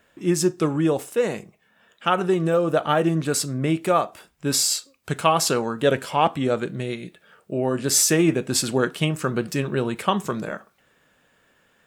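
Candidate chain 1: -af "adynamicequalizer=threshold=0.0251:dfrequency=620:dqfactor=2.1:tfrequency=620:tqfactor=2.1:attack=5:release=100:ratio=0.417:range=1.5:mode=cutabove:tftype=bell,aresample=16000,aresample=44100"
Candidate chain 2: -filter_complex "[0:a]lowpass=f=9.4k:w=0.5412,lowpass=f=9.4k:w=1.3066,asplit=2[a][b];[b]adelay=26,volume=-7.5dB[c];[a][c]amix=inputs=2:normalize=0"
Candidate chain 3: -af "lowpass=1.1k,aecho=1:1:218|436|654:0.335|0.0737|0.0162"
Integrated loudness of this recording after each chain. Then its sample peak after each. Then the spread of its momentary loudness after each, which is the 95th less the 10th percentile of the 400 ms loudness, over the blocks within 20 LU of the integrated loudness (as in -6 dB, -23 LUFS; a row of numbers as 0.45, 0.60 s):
-23.0, -22.0, -24.0 LUFS; -5.0, -4.0, -6.5 dBFS; 10, 11, 12 LU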